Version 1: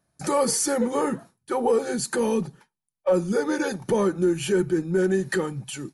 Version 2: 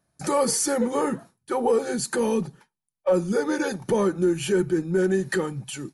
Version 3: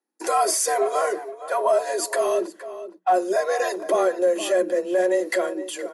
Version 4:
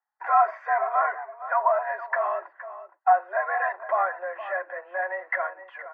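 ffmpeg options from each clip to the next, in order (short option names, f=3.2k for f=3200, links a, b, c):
-af anull
-filter_complex "[0:a]asplit=2[a][b];[b]adelay=466.5,volume=-13dB,highshelf=f=4k:g=-10.5[c];[a][c]amix=inputs=2:normalize=0,agate=range=-14dB:threshold=-47dB:ratio=16:detection=peak,afreqshift=180,volume=1.5dB"
-af "asuperpass=centerf=1200:order=8:qfactor=0.95,volume=3.5dB"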